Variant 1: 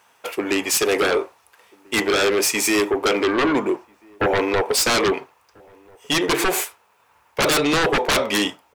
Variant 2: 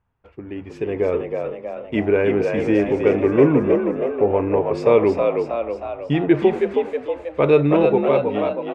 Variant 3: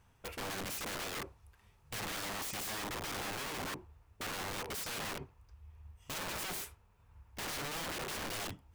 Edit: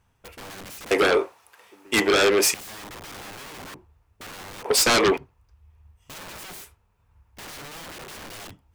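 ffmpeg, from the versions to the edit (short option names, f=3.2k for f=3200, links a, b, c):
-filter_complex "[0:a]asplit=2[a][b];[2:a]asplit=3[c][d][e];[c]atrim=end=0.912[f];[a]atrim=start=0.908:end=2.542[g];[d]atrim=start=2.538:end=4.652[h];[b]atrim=start=4.648:end=5.172[i];[e]atrim=start=5.168[j];[f][g]acrossfade=d=0.004:c1=hsin:c2=hsin[k];[k][h]acrossfade=d=0.004:c1=hsin:c2=hsin[l];[l][i]acrossfade=d=0.004:c1=hsin:c2=hsin[m];[m][j]acrossfade=d=0.004:c1=hsin:c2=hsin"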